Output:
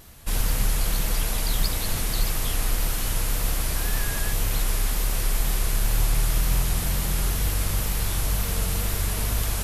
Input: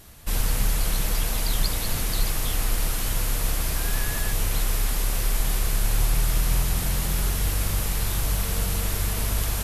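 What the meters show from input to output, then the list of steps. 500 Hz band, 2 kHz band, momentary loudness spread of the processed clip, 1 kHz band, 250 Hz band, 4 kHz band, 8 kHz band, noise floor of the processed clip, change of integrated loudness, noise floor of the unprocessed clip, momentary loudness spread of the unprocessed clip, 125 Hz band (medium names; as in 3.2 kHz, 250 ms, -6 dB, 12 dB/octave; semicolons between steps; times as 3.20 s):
0.0 dB, 0.0 dB, 2 LU, 0.0 dB, 0.0 dB, 0.0 dB, 0.0 dB, -28 dBFS, 0.0 dB, -27 dBFS, 2 LU, 0.0 dB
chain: wow and flutter 58 cents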